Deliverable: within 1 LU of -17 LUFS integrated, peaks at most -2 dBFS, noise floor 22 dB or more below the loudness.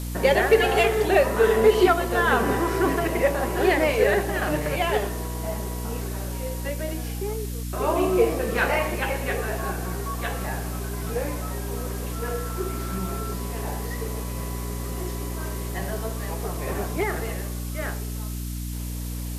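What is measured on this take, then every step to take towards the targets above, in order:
hum 60 Hz; highest harmonic 300 Hz; hum level -28 dBFS; noise floor -31 dBFS; noise floor target -47 dBFS; loudness -25.0 LUFS; peak level -6.5 dBFS; loudness target -17.0 LUFS
-> de-hum 60 Hz, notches 5; noise reduction 16 dB, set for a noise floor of -31 dBFS; trim +8 dB; peak limiter -2 dBFS

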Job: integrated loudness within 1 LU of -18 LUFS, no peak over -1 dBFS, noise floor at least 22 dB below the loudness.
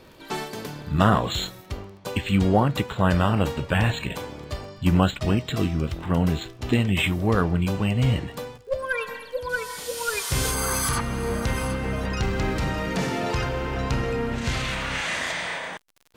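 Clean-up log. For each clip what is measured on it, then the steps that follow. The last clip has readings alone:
tick rate 35 per s; loudness -25.0 LUFS; peak level -4.5 dBFS; loudness target -18.0 LUFS
-> de-click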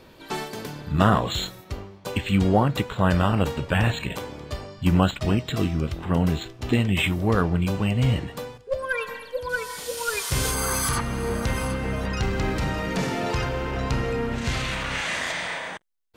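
tick rate 0.19 per s; loudness -25.0 LUFS; peak level -4.5 dBFS; loudness target -18.0 LUFS
-> trim +7 dB; peak limiter -1 dBFS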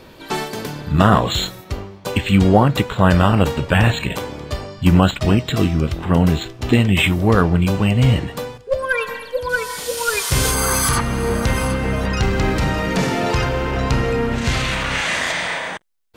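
loudness -18.0 LUFS; peak level -1.0 dBFS; noise floor -41 dBFS

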